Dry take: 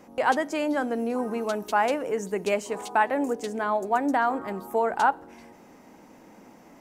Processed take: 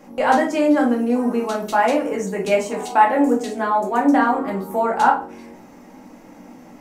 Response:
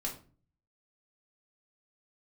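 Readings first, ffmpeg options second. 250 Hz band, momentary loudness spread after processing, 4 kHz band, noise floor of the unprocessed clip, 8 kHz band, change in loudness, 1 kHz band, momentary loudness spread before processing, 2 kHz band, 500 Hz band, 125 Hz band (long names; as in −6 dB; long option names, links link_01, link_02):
+10.5 dB, 7 LU, +5.0 dB, −52 dBFS, +5.0 dB, +7.5 dB, +7.0 dB, 6 LU, +4.5 dB, +6.5 dB, +8.5 dB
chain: -filter_complex "[1:a]atrim=start_sample=2205[link_01];[0:a][link_01]afir=irnorm=-1:irlink=0,volume=4.5dB"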